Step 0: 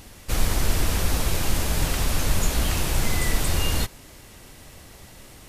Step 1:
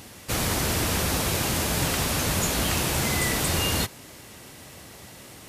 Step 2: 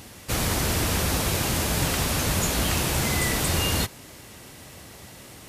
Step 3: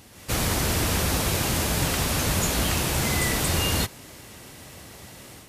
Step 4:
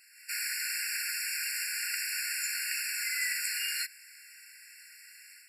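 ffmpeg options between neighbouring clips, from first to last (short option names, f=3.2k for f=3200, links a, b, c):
-af "highpass=100,volume=2.5dB"
-af "lowshelf=f=74:g=5"
-af "dynaudnorm=f=110:g=3:m=7dB,volume=-6.5dB"
-af "afftfilt=real='re*eq(mod(floor(b*sr/1024/1400),2),1)':imag='im*eq(mod(floor(b*sr/1024/1400),2),1)':win_size=1024:overlap=0.75,volume=-3dB"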